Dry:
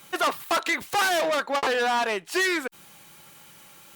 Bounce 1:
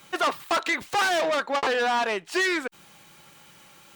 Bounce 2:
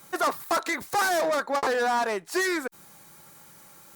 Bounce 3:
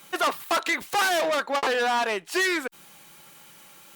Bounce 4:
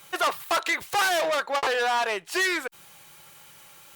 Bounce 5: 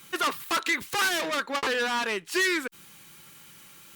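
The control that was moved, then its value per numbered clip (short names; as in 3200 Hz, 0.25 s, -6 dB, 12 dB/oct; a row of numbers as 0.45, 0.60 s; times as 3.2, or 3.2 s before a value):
bell, frequency: 13000, 2900, 92, 240, 700 Hz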